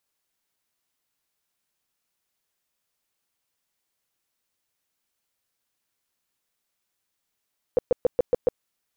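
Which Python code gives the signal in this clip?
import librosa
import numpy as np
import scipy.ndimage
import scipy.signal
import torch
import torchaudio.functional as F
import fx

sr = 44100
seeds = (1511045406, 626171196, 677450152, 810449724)

y = fx.tone_burst(sr, hz=495.0, cycles=8, every_s=0.14, bursts=6, level_db=-14.5)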